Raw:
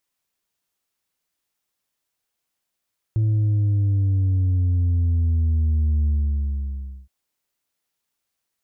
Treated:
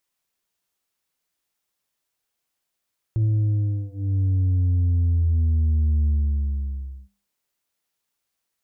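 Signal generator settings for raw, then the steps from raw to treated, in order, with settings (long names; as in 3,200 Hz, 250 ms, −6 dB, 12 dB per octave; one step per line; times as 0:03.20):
bass drop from 110 Hz, over 3.92 s, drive 3 dB, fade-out 1.01 s, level −17 dB
mains-hum notches 50/100/150/200/250/300 Hz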